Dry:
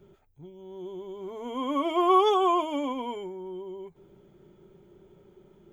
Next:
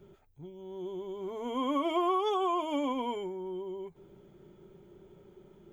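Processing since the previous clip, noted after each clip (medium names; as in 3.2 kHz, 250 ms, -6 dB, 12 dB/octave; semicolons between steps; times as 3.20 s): compression 6:1, threshold -26 dBFS, peak gain reduction 10.5 dB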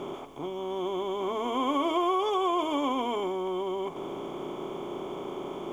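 spectral levelling over time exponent 0.4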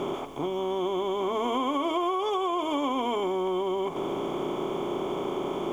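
compression, threshold -31 dBFS, peak gain reduction 8.5 dB; trim +6.5 dB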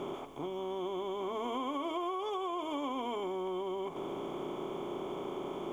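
peaking EQ 5.2 kHz -2 dB; trim -8.5 dB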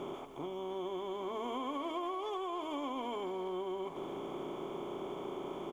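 speakerphone echo 290 ms, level -11 dB; trim -2.5 dB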